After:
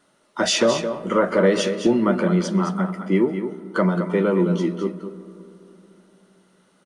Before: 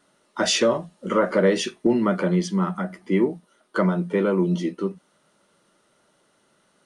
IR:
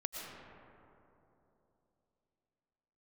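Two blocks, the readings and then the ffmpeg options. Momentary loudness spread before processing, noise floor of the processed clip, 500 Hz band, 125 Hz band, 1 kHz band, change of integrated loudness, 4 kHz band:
11 LU, −62 dBFS, +2.0 dB, +2.0 dB, +2.0 dB, +2.0 dB, +1.5 dB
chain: -filter_complex "[0:a]aecho=1:1:216:0.355,asplit=2[link_01][link_02];[1:a]atrim=start_sample=2205,highshelf=frequency=4700:gain=-11[link_03];[link_02][link_03]afir=irnorm=-1:irlink=0,volume=-12dB[link_04];[link_01][link_04]amix=inputs=2:normalize=0"

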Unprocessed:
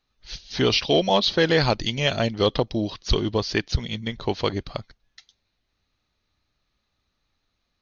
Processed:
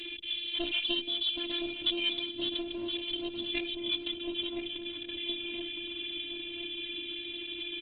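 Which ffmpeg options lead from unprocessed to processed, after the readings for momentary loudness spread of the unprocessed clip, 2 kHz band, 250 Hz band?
13 LU, −8.0 dB, −10.0 dB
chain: -filter_complex "[0:a]aeval=exprs='val(0)+0.5*0.0562*sgn(val(0))':channel_layout=same,equalizer=frequency=2000:width=1.3:gain=-4,aecho=1:1:1.2:0.57,acompressor=threshold=-22dB:ratio=4,asplit=3[link_01][link_02][link_03];[link_01]bandpass=frequency=270:width_type=q:width=8,volume=0dB[link_04];[link_02]bandpass=frequency=2290:width_type=q:width=8,volume=-6dB[link_05];[link_03]bandpass=frequency=3010:width_type=q:width=8,volume=-9dB[link_06];[link_04][link_05][link_06]amix=inputs=3:normalize=0,afftfilt=real='hypot(re,im)*cos(PI*b)':imag='0':win_size=512:overlap=0.75,aresample=8000,aeval=exprs='clip(val(0),-1,0.00668)':channel_layout=same,aresample=44100,aexciter=amount=5.5:drive=4.1:freq=2600,asplit=2[link_07][link_08];[link_08]adelay=1019,lowpass=frequency=1200:poles=1,volume=-4.5dB,asplit=2[link_09][link_10];[link_10]adelay=1019,lowpass=frequency=1200:poles=1,volume=0.52,asplit=2[link_11][link_12];[link_12]adelay=1019,lowpass=frequency=1200:poles=1,volume=0.52,asplit=2[link_13][link_14];[link_14]adelay=1019,lowpass=frequency=1200:poles=1,volume=0.52,asplit=2[link_15][link_16];[link_16]adelay=1019,lowpass=frequency=1200:poles=1,volume=0.52,asplit=2[link_17][link_18];[link_18]adelay=1019,lowpass=frequency=1200:poles=1,volume=0.52,asplit=2[link_19][link_20];[link_20]adelay=1019,lowpass=frequency=1200:poles=1,volume=0.52[link_21];[link_09][link_11][link_13][link_15][link_17][link_19][link_21]amix=inputs=7:normalize=0[link_22];[link_07][link_22]amix=inputs=2:normalize=0,volume=5.5dB" -ar 48000 -c:a libopus -b:a 16k

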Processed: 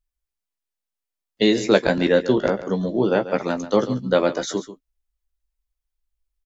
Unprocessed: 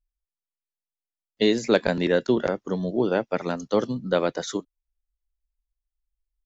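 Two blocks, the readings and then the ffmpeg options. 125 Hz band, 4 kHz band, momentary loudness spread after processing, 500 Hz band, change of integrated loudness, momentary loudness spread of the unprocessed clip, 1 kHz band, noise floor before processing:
+3.5 dB, +4.0 dB, 6 LU, +4.0 dB, +4.0 dB, 7 LU, +4.0 dB, below −85 dBFS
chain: -filter_complex "[0:a]asplit=2[link_01][link_02];[link_02]adelay=15,volume=-7.5dB[link_03];[link_01][link_03]amix=inputs=2:normalize=0,asplit=2[link_04][link_05];[link_05]aecho=0:1:139:0.211[link_06];[link_04][link_06]amix=inputs=2:normalize=0,volume=3dB"

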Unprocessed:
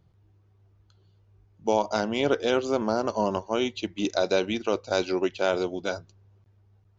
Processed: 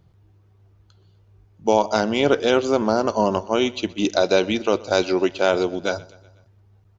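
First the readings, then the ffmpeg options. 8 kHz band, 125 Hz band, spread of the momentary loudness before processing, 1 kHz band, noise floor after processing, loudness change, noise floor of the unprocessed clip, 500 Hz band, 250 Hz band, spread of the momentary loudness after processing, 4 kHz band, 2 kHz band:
can't be measured, +6.0 dB, 5 LU, +6.0 dB, −57 dBFS, +6.0 dB, −62 dBFS, +6.0 dB, +6.0 dB, 5 LU, +6.0 dB, +6.0 dB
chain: -af "aecho=1:1:124|248|372|496:0.0794|0.0445|0.0249|0.0139,volume=6dB"

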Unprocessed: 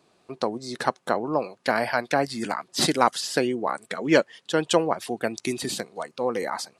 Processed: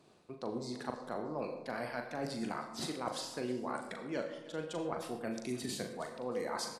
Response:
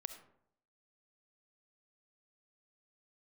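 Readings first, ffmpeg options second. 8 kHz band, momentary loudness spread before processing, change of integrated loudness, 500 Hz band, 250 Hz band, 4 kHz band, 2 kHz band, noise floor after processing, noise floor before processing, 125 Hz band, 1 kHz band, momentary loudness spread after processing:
−13.5 dB, 9 LU, −14.0 dB, −13.5 dB, −11.5 dB, −14.5 dB, −16.0 dB, −52 dBFS, −66 dBFS, −10.5 dB, −15.0 dB, 4 LU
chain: -filter_complex "[0:a]lowshelf=frequency=340:gain=6.5,areverse,acompressor=threshold=-33dB:ratio=6,areverse,asplit=2[link_01][link_02];[link_02]adelay=40,volume=-6.5dB[link_03];[link_01][link_03]amix=inputs=2:normalize=0,aecho=1:1:313|626|939:0.126|0.0441|0.0154[link_04];[1:a]atrim=start_sample=2205,asetrate=35721,aresample=44100[link_05];[link_04][link_05]afir=irnorm=-1:irlink=0,volume=-1.5dB"

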